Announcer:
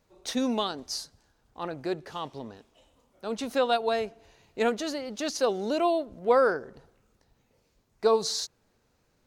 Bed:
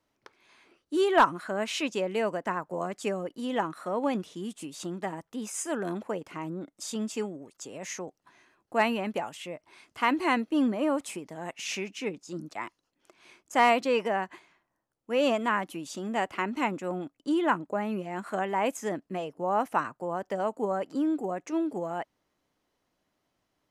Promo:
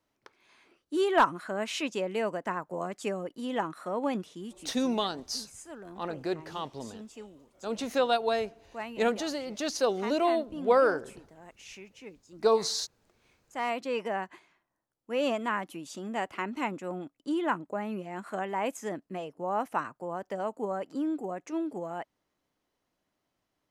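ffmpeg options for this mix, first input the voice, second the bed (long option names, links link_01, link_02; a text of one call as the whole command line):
ffmpeg -i stem1.wav -i stem2.wav -filter_complex "[0:a]adelay=4400,volume=-1dB[link_01];[1:a]volume=8dB,afade=type=out:start_time=4.2:duration=0.65:silence=0.266073,afade=type=in:start_time=13.51:duration=0.64:silence=0.316228[link_02];[link_01][link_02]amix=inputs=2:normalize=0" out.wav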